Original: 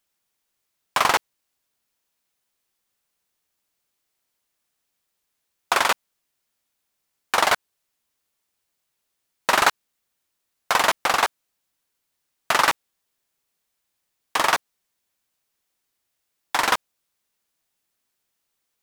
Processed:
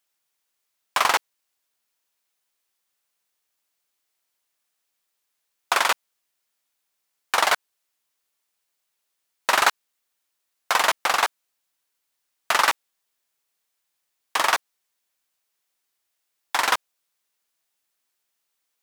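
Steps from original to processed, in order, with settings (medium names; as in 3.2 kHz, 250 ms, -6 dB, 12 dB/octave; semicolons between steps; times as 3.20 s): bass shelf 310 Hz -11.5 dB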